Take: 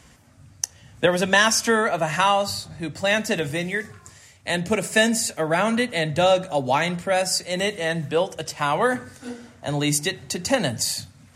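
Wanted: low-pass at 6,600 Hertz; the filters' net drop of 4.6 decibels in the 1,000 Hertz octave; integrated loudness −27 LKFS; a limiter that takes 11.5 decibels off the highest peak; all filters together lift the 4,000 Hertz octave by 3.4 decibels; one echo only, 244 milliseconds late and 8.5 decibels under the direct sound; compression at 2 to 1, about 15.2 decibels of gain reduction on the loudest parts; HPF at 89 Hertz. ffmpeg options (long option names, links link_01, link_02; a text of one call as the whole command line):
ffmpeg -i in.wav -af "highpass=89,lowpass=6600,equalizer=frequency=1000:width_type=o:gain=-6.5,equalizer=frequency=4000:width_type=o:gain=5.5,acompressor=threshold=-43dB:ratio=2,alimiter=level_in=3.5dB:limit=-24dB:level=0:latency=1,volume=-3.5dB,aecho=1:1:244:0.376,volume=10.5dB" out.wav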